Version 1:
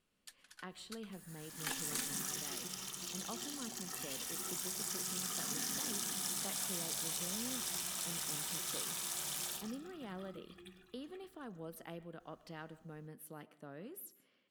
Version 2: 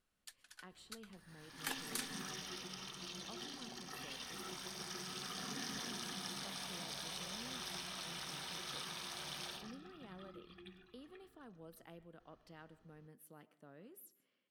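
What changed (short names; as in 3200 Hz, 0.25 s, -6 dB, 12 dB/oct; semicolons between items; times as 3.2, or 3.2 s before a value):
speech -8.0 dB; second sound: add polynomial smoothing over 15 samples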